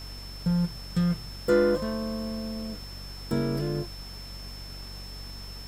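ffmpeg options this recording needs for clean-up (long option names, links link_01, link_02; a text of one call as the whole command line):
ffmpeg -i in.wav -af "adeclick=threshold=4,bandreject=frequency=47.4:width_type=h:width=4,bandreject=frequency=94.8:width_type=h:width=4,bandreject=frequency=142.2:width_type=h:width=4,bandreject=frequency=189.6:width_type=h:width=4,bandreject=frequency=237:width_type=h:width=4,bandreject=frequency=5300:width=30,afftdn=noise_reduction=30:noise_floor=-41" out.wav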